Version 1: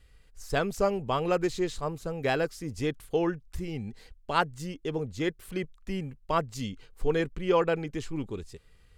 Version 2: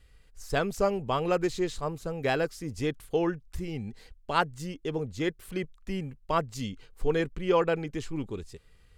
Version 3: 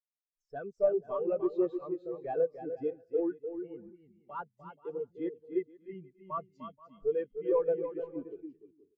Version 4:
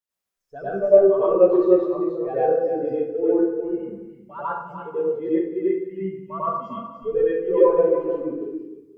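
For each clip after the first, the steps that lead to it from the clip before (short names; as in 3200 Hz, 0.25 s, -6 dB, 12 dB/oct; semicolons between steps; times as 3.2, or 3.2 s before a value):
nothing audible
overdrive pedal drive 23 dB, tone 3900 Hz, clips at -12 dBFS; bouncing-ball echo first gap 0.3 s, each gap 0.6×, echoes 5; spectral expander 2.5:1; gain -8 dB
plate-style reverb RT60 0.73 s, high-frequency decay 0.65×, pre-delay 80 ms, DRR -10 dB; gain +2.5 dB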